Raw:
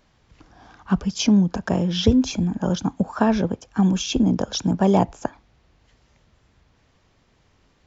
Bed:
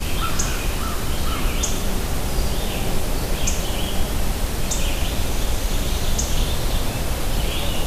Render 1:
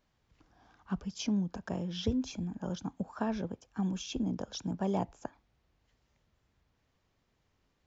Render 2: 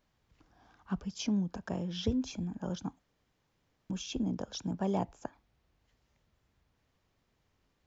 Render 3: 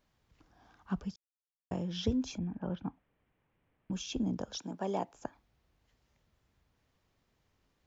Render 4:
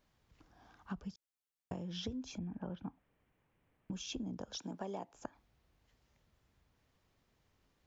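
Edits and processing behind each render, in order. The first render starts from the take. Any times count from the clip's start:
trim -14.5 dB
2.99–3.90 s: room tone
1.16–1.71 s: mute; 2.38–3.92 s: Chebyshev low-pass 2.6 kHz, order 3; 4.57–5.14 s: high-pass 280 Hz
compression 6:1, threshold -39 dBFS, peak gain reduction 13 dB

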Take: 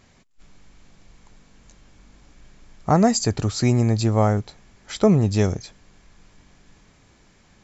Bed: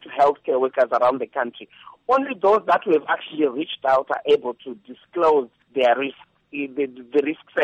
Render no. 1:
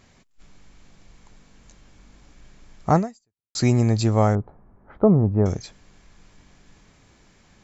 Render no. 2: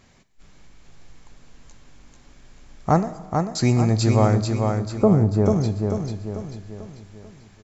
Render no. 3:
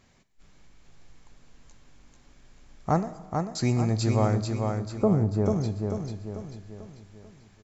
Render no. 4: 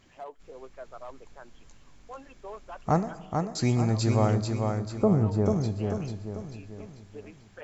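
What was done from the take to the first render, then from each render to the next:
2.97–3.55 s: fade out exponential; 4.35–5.46 s: low-pass 1.2 kHz 24 dB/octave
on a send: feedback delay 442 ms, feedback 46%, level -4.5 dB; on the sum: Schroeder reverb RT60 1.4 s, combs from 28 ms, DRR 14 dB
trim -6 dB
add bed -25.5 dB

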